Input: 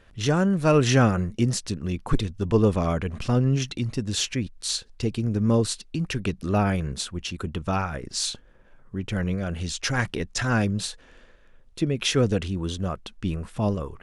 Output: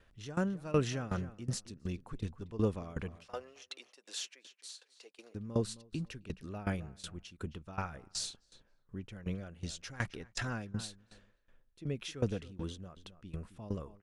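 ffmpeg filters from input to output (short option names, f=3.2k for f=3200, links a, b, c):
-filter_complex "[0:a]asettb=1/sr,asplit=3[a][b][c];[a]atrim=end=3.164[d];[b]atrim=start=3.16:end=5.35,asetpts=PTS-STARTPTS,afade=t=in:d=0.004:c=qsin,afade=t=out:st=2.186:d=0.004:c=qsin,highpass=f=510:w=0.5412,highpass=f=510:w=1.3066[e];[c]atrim=start=5.346[f];[d][e]acrossfade=d=0.004:c1=hsin:c2=qsin[g];[g][f]acrossfade=d=0.004:c1=qsin:c2=hsin,asplit=2[h][i];[i]adelay=266,lowpass=f=3.1k:p=1,volume=-17dB,asplit=2[j][k];[k]adelay=266,lowpass=f=3.1k:p=1,volume=0.2[l];[h][j][l]amix=inputs=3:normalize=0,aeval=exprs='val(0)*pow(10,-19*if(lt(mod(2.7*n/s,1),2*abs(2.7)/1000),1-mod(2.7*n/s,1)/(2*abs(2.7)/1000),(mod(2.7*n/s,1)-2*abs(2.7)/1000)/(1-2*abs(2.7)/1000))/20)':c=same,volume=-7.5dB"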